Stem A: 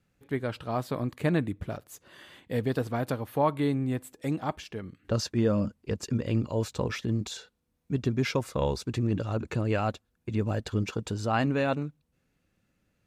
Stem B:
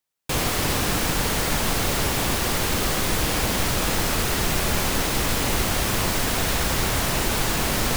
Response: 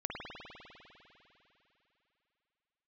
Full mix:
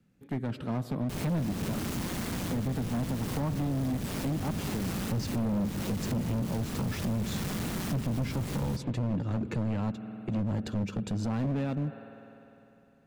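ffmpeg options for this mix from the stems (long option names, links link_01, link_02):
-filter_complex "[0:a]volume=-3dB,asplit=2[link_01][link_02];[link_02]volume=-17.5dB[link_03];[1:a]aeval=exprs='val(0)*sin(2*PI*92*n/s)':channel_layout=same,asoftclip=type=hard:threshold=-23.5dB,adelay=800,volume=-10dB,asplit=2[link_04][link_05];[link_05]volume=-15.5dB[link_06];[2:a]atrim=start_sample=2205[link_07];[link_03][link_06]amix=inputs=2:normalize=0[link_08];[link_08][link_07]afir=irnorm=-1:irlink=0[link_09];[link_01][link_04][link_09]amix=inputs=3:normalize=0,equalizer=frequency=210:width_type=o:width=1.4:gain=12,acrossover=split=180[link_10][link_11];[link_11]acompressor=threshold=-30dB:ratio=10[link_12];[link_10][link_12]amix=inputs=2:normalize=0,volume=26.5dB,asoftclip=hard,volume=-26.5dB"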